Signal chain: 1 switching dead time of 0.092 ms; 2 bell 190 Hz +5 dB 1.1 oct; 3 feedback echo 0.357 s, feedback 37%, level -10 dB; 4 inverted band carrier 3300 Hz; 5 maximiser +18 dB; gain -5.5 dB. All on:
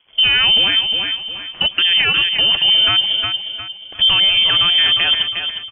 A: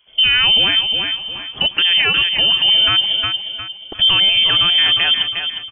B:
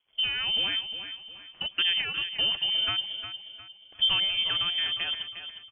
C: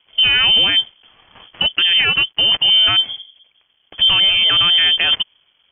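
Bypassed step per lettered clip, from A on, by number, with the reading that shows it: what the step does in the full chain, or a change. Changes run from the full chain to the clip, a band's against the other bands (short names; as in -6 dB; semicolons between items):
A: 1, distortion -12 dB; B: 5, crest factor change +6.0 dB; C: 3, momentary loudness spread change -3 LU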